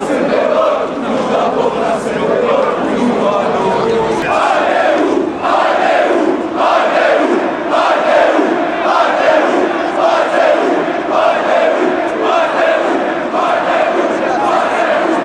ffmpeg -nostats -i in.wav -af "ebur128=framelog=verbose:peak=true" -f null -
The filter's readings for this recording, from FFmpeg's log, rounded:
Integrated loudness:
  I:         -12.6 LUFS
  Threshold: -22.6 LUFS
Loudness range:
  LRA:         1.9 LU
  Threshold: -32.5 LUFS
  LRA low:   -13.6 LUFS
  LRA high:  -11.7 LUFS
True peak:
  Peak:       -1.2 dBFS